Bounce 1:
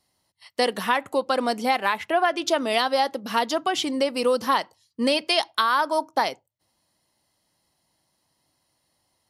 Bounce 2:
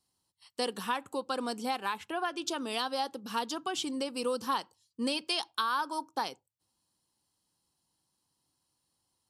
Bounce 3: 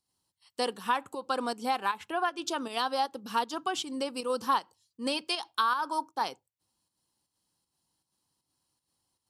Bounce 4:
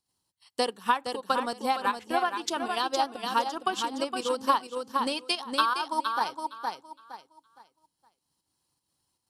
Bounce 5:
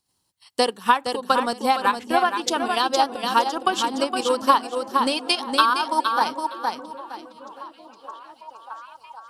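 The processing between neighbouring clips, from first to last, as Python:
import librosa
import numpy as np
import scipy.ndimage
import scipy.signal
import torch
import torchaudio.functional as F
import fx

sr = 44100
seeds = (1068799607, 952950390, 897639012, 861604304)

y1 = fx.graphic_eq_31(x, sr, hz=(630, 2000, 8000), db=(-12, -11, 7))
y1 = F.gain(torch.from_numpy(y1), -8.0).numpy()
y2 = fx.dynamic_eq(y1, sr, hz=1000.0, q=0.71, threshold_db=-40.0, ratio=4.0, max_db=5)
y2 = fx.volume_shaper(y2, sr, bpm=157, per_beat=1, depth_db=-7, release_ms=90.0, shape='slow start')
y3 = fx.echo_feedback(y2, sr, ms=464, feedback_pct=28, wet_db=-4.5)
y3 = fx.transient(y3, sr, attack_db=5, sustain_db=-5)
y4 = fx.echo_stepped(y3, sr, ms=624, hz=170.0, octaves=0.7, feedback_pct=70, wet_db=-9)
y4 = F.gain(torch.from_numpy(y4), 7.0).numpy()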